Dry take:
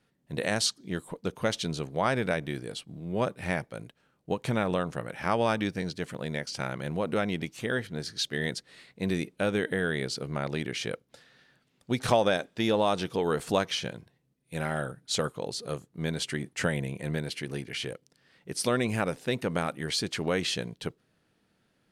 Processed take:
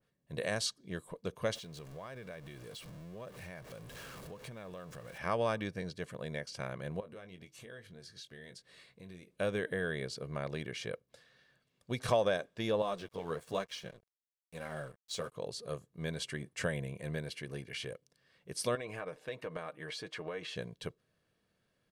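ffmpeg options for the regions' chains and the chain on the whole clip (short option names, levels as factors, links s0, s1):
-filter_complex "[0:a]asettb=1/sr,asplit=3[s0][s1][s2];[s0]atrim=end=1.554[s3];[s1]atrim=start=1.55:end=5.18,asetpts=PTS-STARTPTS,afade=t=in:d=0.004:c=qsin,afade=t=out:st=3.626:d=0.004:c=qsin,aeval=exprs='val(0)+0.5*0.0168*sgn(val(0))':c=same,acompressor=threshold=0.00891:ratio=3:attack=3.2:release=140:knee=1:detection=peak[s4];[s2]atrim=start=5.176[s5];[s3][s4]acrossfade=d=0.004:c1=hsin:c2=qsin[s6];[s6][s5]acrossfade=d=0.004:c1=qsin:c2=hsin,asettb=1/sr,asplit=3[s7][s8][s9];[s7]atrim=end=7.004[s10];[s8]atrim=start=7:end=9.31,asetpts=PTS-STARTPTS,afade=t=in:d=0.004:c=qsin,afade=t=out:st=2.306:d=0.004:c=qsin,acompressor=threshold=0.00562:ratio=3:attack=3.2:release=140:knee=1:detection=peak,asplit=2[s11][s12];[s12]adelay=22,volume=0.355[s13];[s11][s13]amix=inputs=2:normalize=0,atrim=end_sample=101871[s14];[s9]atrim=start=9.306[s15];[s10][s14]acrossfade=d=0.004:c1=hsin:c2=qsin[s16];[s16][s15]acrossfade=d=0.004:c1=qsin:c2=hsin,asettb=1/sr,asplit=3[s17][s18][s19];[s17]atrim=end=12.824[s20];[s18]atrim=start=12.82:end=15.32,asetpts=PTS-STARTPTS,afade=t=in:d=0.004:c=qsin,afade=t=out:st=2.496:d=0.004:c=qsin,highpass=80,flanger=delay=3.7:depth=9:regen=-16:speed=1.1:shape=sinusoidal,aeval=exprs='sgn(val(0))*max(abs(val(0))-0.00335,0)':c=same[s21];[s19]atrim=start=15.316[s22];[s20][s21]acrossfade=d=0.004:c1=hsin:c2=qsin[s23];[s23][s22]acrossfade=d=0.004:c1=qsin:c2=hsin,asettb=1/sr,asplit=3[s24][s25][s26];[s24]atrim=end=18.754[s27];[s25]atrim=start=18.75:end=20.56,asetpts=PTS-STARTPTS,afade=t=in:d=0.004:c=qsin,afade=t=out:st=1.806:d=0.004:c=qsin,bass=f=250:g=-11,treble=f=4000:g=-10,acompressor=threshold=0.0282:ratio=3:attack=3.2:release=140:knee=1:detection=peak,aecho=1:1:6.5:0.5,atrim=end_sample=79821[s28];[s26]atrim=start=20.556[s29];[s27][s28]acrossfade=d=0.004:c1=hsin:c2=qsin[s30];[s30][s29]acrossfade=d=0.004:c1=qsin:c2=hsin,aecho=1:1:1.8:0.39,adynamicequalizer=threshold=0.00708:dfrequency=2000:dqfactor=0.7:tfrequency=2000:tqfactor=0.7:attack=5:release=100:ratio=0.375:range=2:mode=cutabove:tftype=highshelf,volume=0.447"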